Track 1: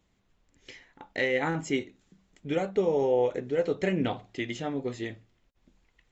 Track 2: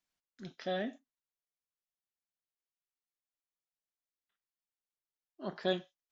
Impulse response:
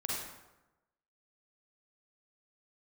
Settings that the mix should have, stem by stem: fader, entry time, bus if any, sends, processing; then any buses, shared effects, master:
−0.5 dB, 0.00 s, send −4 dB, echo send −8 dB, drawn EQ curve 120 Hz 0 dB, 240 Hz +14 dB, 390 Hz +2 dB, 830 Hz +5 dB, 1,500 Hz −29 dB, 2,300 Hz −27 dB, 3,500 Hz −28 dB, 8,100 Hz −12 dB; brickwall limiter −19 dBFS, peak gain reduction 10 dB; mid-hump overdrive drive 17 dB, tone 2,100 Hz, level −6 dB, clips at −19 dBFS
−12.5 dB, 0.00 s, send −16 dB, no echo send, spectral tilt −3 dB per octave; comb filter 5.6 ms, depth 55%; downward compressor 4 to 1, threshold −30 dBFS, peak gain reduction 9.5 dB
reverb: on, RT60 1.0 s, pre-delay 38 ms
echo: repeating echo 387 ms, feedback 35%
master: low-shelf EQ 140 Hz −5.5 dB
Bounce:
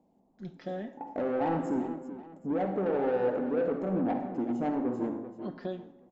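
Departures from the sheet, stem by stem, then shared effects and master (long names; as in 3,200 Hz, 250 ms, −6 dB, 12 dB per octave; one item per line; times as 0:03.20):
stem 1 −0.5 dB → −7.0 dB
stem 2 −12.5 dB → −3.5 dB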